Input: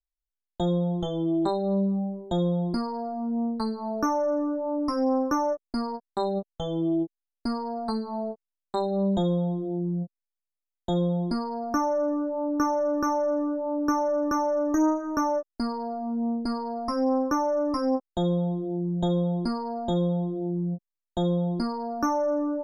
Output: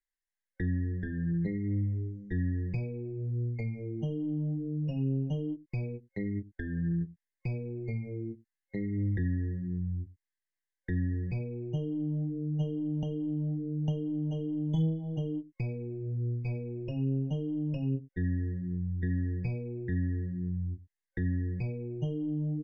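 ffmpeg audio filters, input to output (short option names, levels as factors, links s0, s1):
-filter_complex "[0:a]superequalizer=10b=0.562:12b=0.447:13b=3.98,acrossover=split=630[s0][s1];[s0]aecho=1:1:89:0.133[s2];[s1]acompressor=threshold=0.0112:ratio=16[s3];[s2][s3]amix=inputs=2:normalize=0,asetrate=22696,aresample=44100,atempo=1.94306,volume=0.596"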